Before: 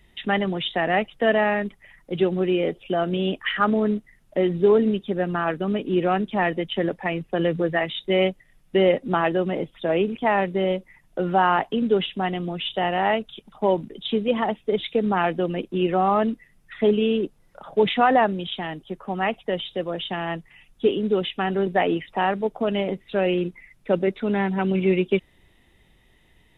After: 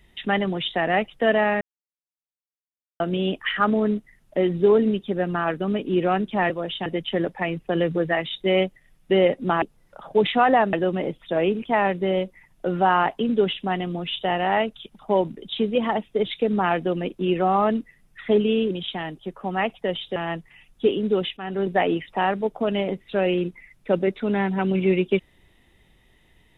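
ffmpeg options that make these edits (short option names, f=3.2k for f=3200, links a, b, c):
-filter_complex "[0:a]asplit=10[a][b][c][d][e][f][g][h][i][j];[a]atrim=end=1.61,asetpts=PTS-STARTPTS,afade=t=out:st=1.606:d=0.004:c=hsin[k];[b]atrim=start=1.61:end=3,asetpts=PTS-STARTPTS,volume=0[l];[c]atrim=start=3:end=6.502,asetpts=PTS-STARTPTS,afade=t=in:d=0.004:c=hsin[m];[d]atrim=start=19.798:end=20.162[n];[e]atrim=start=6.498:end=9.262[o];[f]atrim=start=17.238:end=18.352[p];[g]atrim=start=9.258:end=17.242[q];[h]atrim=start=18.348:end=19.802[r];[i]atrim=start=20.158:end=21.37,asetpts=PTS-STARTPTS,afade=t=out:st=1.208:d=0.004:c=hsin:silence=0.211349[s];[j]atrim=start=21.37,asetpts=PTS-STARTPTS,afade=t=in:d=0.31:silence=0.211349[t];[k][l][m]concat=n=3:v=0:a=1[u];[u][n]acrossfade=d=0.004:c1=hsin:c2=hsin[v];[v][o]acrossfade=d=0.004:c1=hsin:c2=hsin[w];[w][p]acrossfade=d=0.004:c1=hsin:c2=hsin[x];[x][q]acrossfade=d=0.004:c1=hsin:c2=hsin[y];[y][r]acrossfade=d=0.004:c1=hsin:c2=hsin[z];[s][t]concat=n=2:v=0:a=1[aa];[z][aa]acrossfade=d=0.004:c1=hsin:c2=hsin"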